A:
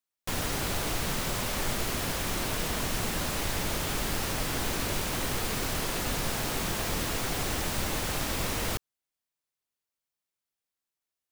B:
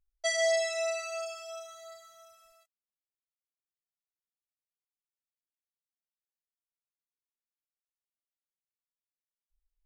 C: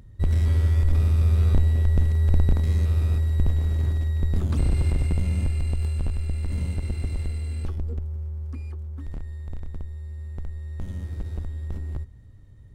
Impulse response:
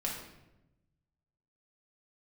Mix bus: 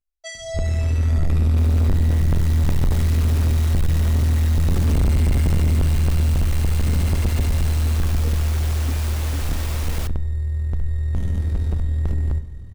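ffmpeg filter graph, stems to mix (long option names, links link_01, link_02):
-filter_complex "[0:a]dynaudnorm=framelen=320:gausssize=7:maxgain=6.5dB,adelay=1300,volume=-7.5dB,asplit=2[link_01][link_02];[link_02]volume=-20.5dB[link_03];[1:a]asplit=2[link_04][link_05];[link_05]adelay=11.6,afreqshift=-1.7[link_06];[link_04][link_06]amix=inputs=2:normalize=1,volume=-0.5dB[link_07];[2:a]dynaudnorm=framelen=280:gausssize=5:maxgain=10dB,tremolo=f=41:d=0.519,adelay=350,volume=1dB,asplit=2[link_08][link_09];[link_09]volume=-14dB[link_10];[3:a]atrim=start_sample=2205[link_11];[link_03][link_10]amix=inputs=2:normalize=0[link_12];[link_12][link_11]afir=irnorm=-1:irlink=0[link_13];[link_01][link_07][link_08][link_13]amix=inputs=4:normalize=0,asoftclip=type=tanh:threshold=-13.5dB"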